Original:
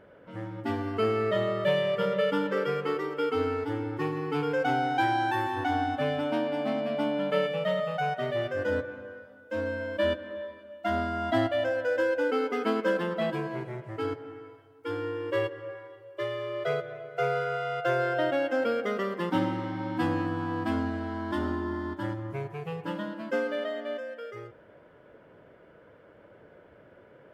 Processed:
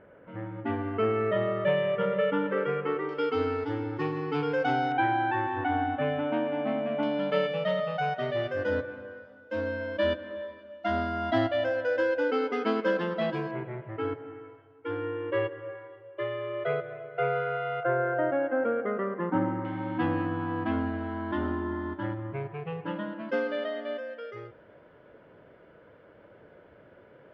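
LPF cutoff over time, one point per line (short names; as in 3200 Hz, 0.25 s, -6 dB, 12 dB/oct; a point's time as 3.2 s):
LPF 24 dB/oct
2700 Hz
from 3.09 s 5500 Hz
from 4.92 s 2800 Hz
from 7.03 s 5500 Hz
from 13.51 s 2900 Hz
from 17.83 s 1800 Hz
from 19.65 s 3100 Hz
from 23.29 s 4900 Hz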